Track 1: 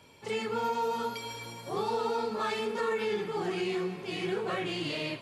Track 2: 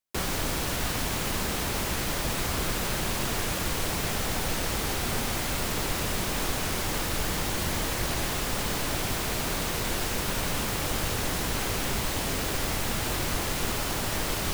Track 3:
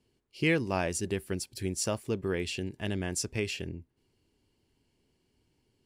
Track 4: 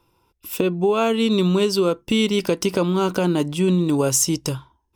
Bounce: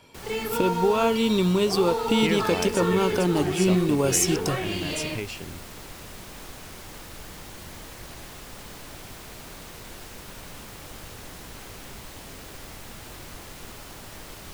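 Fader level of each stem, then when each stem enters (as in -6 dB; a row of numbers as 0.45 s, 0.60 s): +3.0 dB, -12.5 dB, -1.5 dB, -3.5 dB; 0.00 s, 0.00 s, 1.80 s, 0.00 s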